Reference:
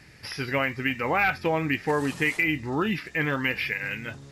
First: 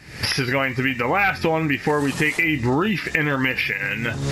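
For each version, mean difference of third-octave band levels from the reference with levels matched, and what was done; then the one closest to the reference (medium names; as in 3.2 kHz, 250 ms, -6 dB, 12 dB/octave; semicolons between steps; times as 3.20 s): 3.0 dB: recorder AGC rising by 77 dB/s; trim +4 dB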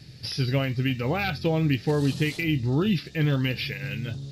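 4.5 dB: graphic EQ 125/1000/2000/4000/8000 Hz +10/-9/-11/+11/-5 dB; trim +1.5 dB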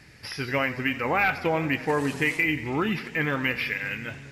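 2.0 dB: modulated delay 88 ms, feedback 73%, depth 109 cents, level -16.5 dB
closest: third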